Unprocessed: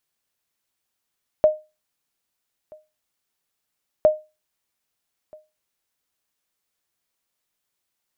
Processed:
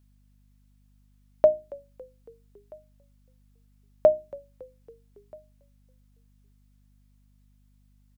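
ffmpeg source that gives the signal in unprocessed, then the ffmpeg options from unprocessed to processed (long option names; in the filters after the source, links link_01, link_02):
-f lavfi -i "aevalsrc='0.447*(sin(2*PI*616*mod(t,2.61))*exp(-6.91*mod(t,2.61)/0.26)+0.0376*sin(2*PI*616*max(mod(t,2.61)-1.28,0))*exp(-6.91*max(mod(t,2.61)-1.28,0)/0.26))':duration=5.22:sample_rate=44100"
-filter_complex "[0:a]bandreject=frequency=60:width_type=h:width=6,bandreject=frequency=120:width_type=h:width=6,bandreject=frequency=180:width_type=h:width=6,bandreject=frequency=240:width_type=h:width=6,bandreject=frequency=300:width_type=h:width=6,bandreject=frequency=360:width_type=h:width=6,aeval=exprs='val(0)+0.001*(sin(2*PI*50*n/s)+sin(2*PI*2*50*n/s)/2+sin(2*PI*3*50*n/s)/3+sin(2*PI*4*50*n/s)/4+sin(2*PI*5*50*n/s)/5)':channel_layout=same,asplit=5[link_01][link_02][link_03][link_04][link_05];[link_02]adelay=278,afreqshift=-52,volume=-22.5dB[link_06];[link_03]adelay=556,afreqshift=-104,volume=-27.4dB[link_07];[link_04]adelay=834,afreqshift=-156,volume=-32.3dB[link_08];[link_05]adelay=1112,afreqshift=-208,volume=-37.1dB[link_09];[link_01][link_06][link_07][link_08][link_09]amix=inputs=5:normalize=0"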